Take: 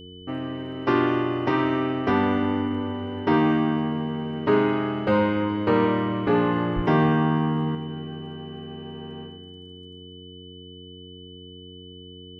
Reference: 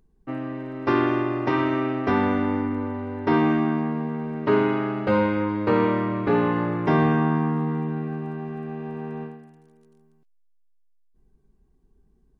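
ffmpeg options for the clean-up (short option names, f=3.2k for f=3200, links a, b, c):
-filter_complex "[0:a]bandreject=f=90.7:t=h:w=4,bandreject=f=181.4:t=h:w=4,bandreject=f=272.1:t=h:w=4,bandreject=f=362.8:t=h:w=4,bandreject=f=453.5:t=h:w=4,bandreject=f=3k:w=30,asplit=3[a][b][c];[a]afade=t=out:st=6.75:d=0.02[d];[b]highpass=f=140:w=0.5412,highpass=f=140:w=1.3066,afade=t=in:st=6.75:d=0.02,afade=t=out:st=6.87:d=0.02[e];[c]afade=t=in:st=6.87:d=0.02[f];[d][e][f]amix=inputs=3:normalize=0,asetnsamples=n=441:p=0,asendcmd='7.75 volume volume 5.5dB',volume=0dB"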